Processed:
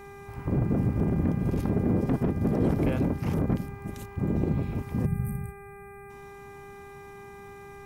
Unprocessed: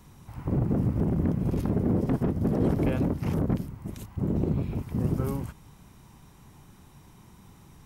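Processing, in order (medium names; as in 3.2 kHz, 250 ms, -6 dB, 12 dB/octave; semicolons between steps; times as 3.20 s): time-frequency box 5.06–6.10 s, 220–7800 Hz -24 dB; mains buzz 400 Hz, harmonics 6, -46 dBFS -5 dB/octave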